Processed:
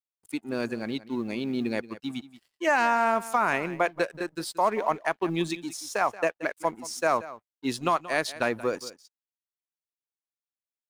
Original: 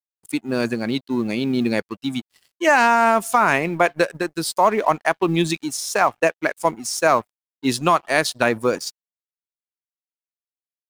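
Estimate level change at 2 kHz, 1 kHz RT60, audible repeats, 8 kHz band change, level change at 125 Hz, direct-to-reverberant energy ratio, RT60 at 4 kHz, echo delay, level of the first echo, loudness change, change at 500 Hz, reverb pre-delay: -8.0 dB, no reverb, 1, -10.5 dB, -10.5 dB, no reverb, no reverb, 179 ms, -16.5 dB, -8.0 dB, -7.5 dB, no reverb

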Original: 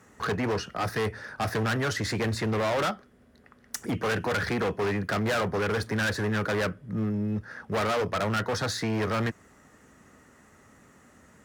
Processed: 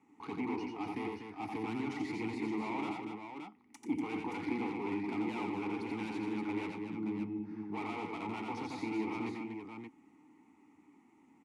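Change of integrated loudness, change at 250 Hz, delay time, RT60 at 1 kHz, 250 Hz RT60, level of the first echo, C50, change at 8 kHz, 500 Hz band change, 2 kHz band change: -10.0 dB, -4.5 dB, 88 ms, no reverb, no reverb, -3.5 dB, no reverb, under -20 dB, -13.5 dB, -14.0 dB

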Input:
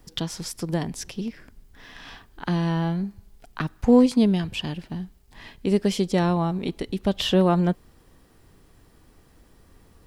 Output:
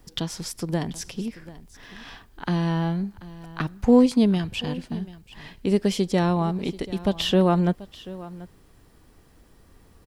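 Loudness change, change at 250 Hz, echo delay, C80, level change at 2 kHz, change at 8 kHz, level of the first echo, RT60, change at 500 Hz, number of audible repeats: 0.0 dB, 0.0 dB, 736 ms, no reverb, 0.0 dB, 0.0 dB, -18.0 dB, no reverb, 0.0 dB, 1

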